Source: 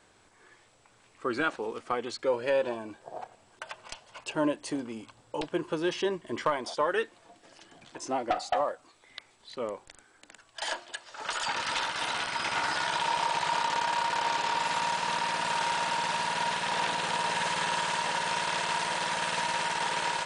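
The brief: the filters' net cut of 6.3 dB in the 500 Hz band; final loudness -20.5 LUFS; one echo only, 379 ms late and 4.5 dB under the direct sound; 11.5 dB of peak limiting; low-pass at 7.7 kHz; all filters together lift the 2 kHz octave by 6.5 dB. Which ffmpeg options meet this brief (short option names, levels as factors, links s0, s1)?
-af "lowpass=7700,equalizer=f=500:t=o:g=-8.5,equalizer=f=2000:t=o:g=9,alimiter=level_in=1.06:limit=0.0631:level=0:latency=1,volume=0.944,aecho=1:1:379:0.596,volume=3.98"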